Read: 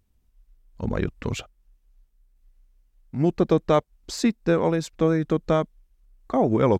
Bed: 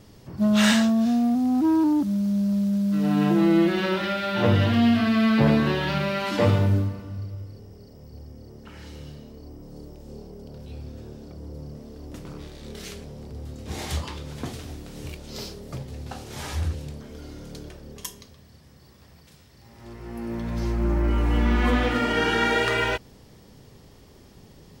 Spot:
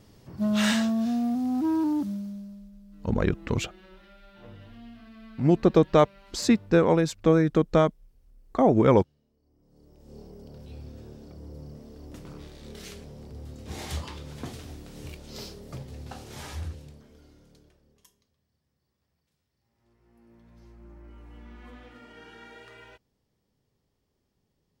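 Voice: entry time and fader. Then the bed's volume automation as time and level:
2.25 s, +1.0 dB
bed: 2.05 s -5 dB
2.76 s -28 dB
9.42 s -28 dB
10.2 s -4.5 dB
16.31 s -4.5 dB
18.19 s -26 dB

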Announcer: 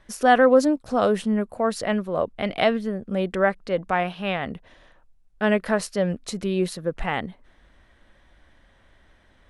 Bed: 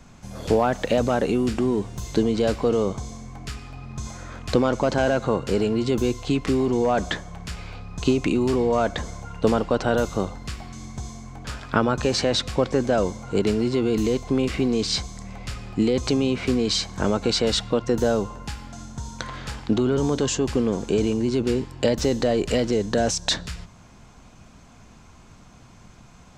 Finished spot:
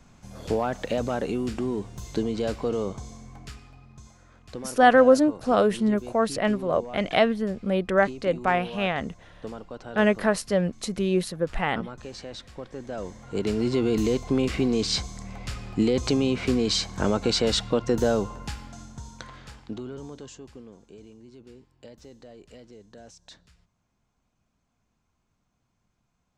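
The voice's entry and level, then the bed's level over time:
4.55 s, 0.0 dB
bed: 3.37 s -6 dB
4.16 s -17.5 dB
12.7 s -17.5 dB
13.68 s -1.5 dB
18.49 s -1.5 dB
20.9 s -26 dB

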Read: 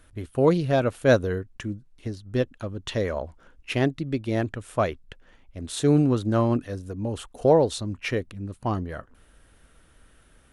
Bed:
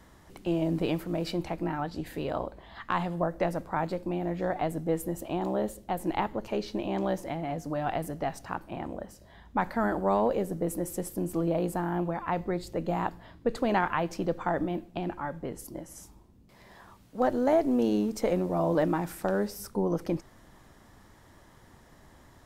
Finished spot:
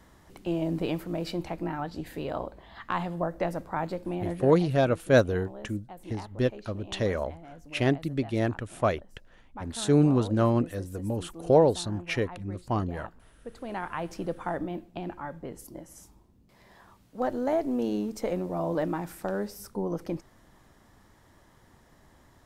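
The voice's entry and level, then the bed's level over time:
4.05 s, -1.5 dB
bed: 4.33 s -1 dB
4.59 s -14 dB
13.49 s -14 dB
14.09 s -3 dB

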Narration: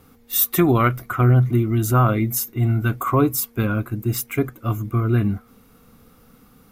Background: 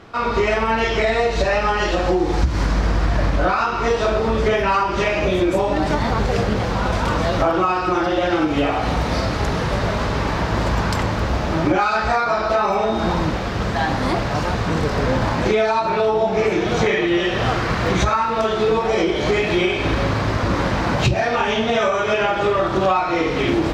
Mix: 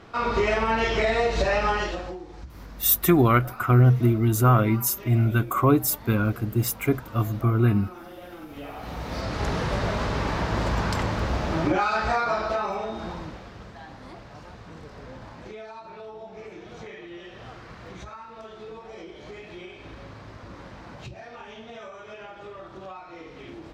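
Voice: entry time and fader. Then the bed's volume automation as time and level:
2.50 s, -1.5 dB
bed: 1.74 s -4.5 dB
2.28 s -23.5 dB
8.4 s -23.5 dB
9.48 s -5.5 dB
12.3 s -5.5 dB
13.8 s -23 dB

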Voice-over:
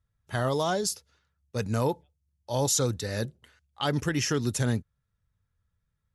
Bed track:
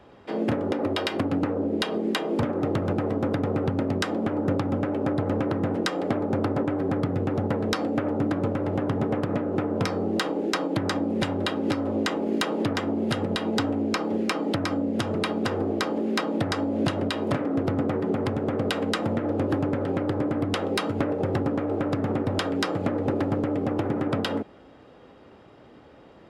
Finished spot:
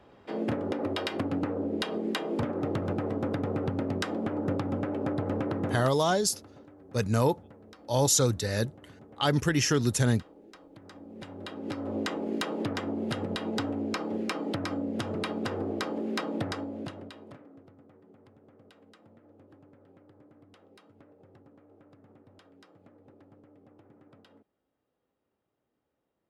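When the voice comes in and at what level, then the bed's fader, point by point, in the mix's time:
5.40 s, +2.0 dB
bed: 5.73 s -5 dB
5.96 s -26.5 dB
10.72 s -26.5 dB
11.94 s -6 dB
16.45 s -6 dB
17.75 s -31.5 dB

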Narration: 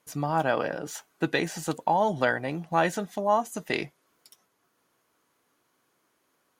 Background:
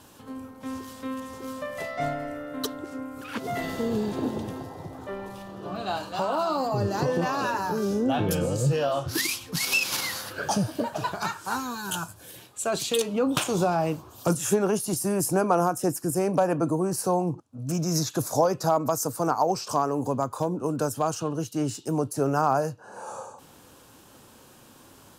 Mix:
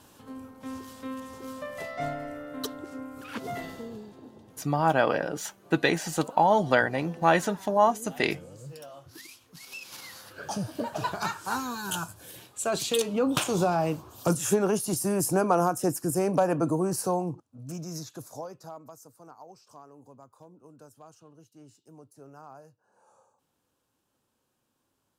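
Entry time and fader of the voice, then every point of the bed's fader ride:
4.50 s, +2.5 dB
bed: 3.49 s -3.5 dB
4.19 s -20 dB
9.61 s -20 dB
11.02 s -1 dB
16.94 s -1 dB
19.16 s -25 dB

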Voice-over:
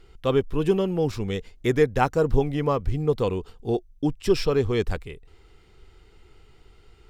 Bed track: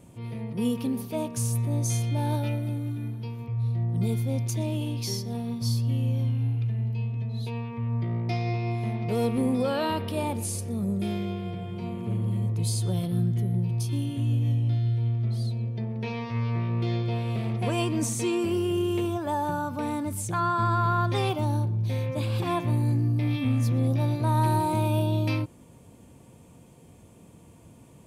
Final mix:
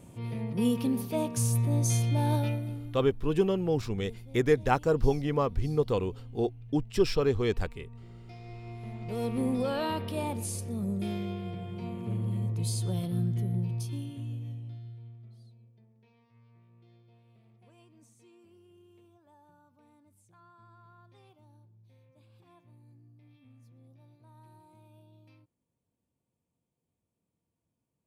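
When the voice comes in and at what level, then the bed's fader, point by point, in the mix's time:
2.70 s, -4.0 dB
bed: 2.41 s 0 dB
3.37 s -20.5 dB
8.25 s -20.5 dB
9.42 s -4 dB
13.63 s -4 dB
16.06 s -33 dB

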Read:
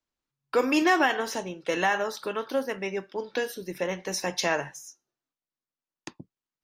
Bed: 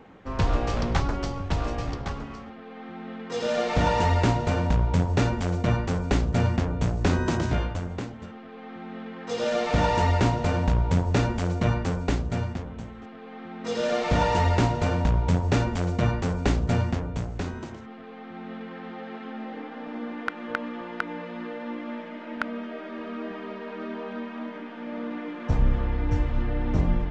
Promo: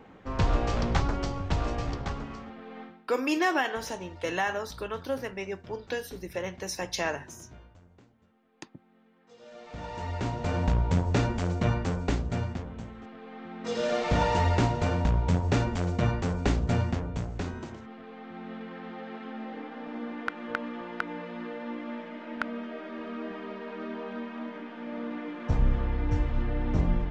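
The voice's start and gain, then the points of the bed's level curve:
2.55 s, -4.0 dB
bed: 2.82 s -1.5 dB
3.08 s -25 dB
9.4 s -25 dB
10.62 s -2.5 dB

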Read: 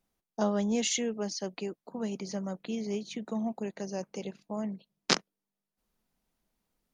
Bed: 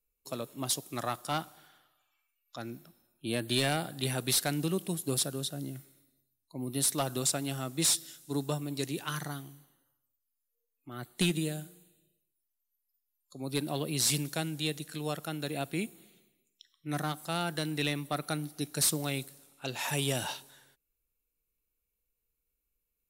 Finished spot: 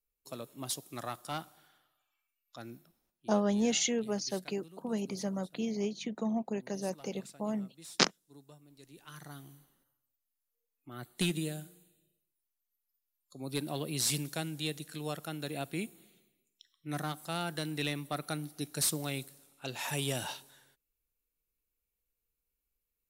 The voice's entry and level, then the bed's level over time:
2.90 s, 0.0 dB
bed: 2.74 s -5.5 dB
3.41 s -23 dB
8.8 s -23 dB
9.53 s -3 dB

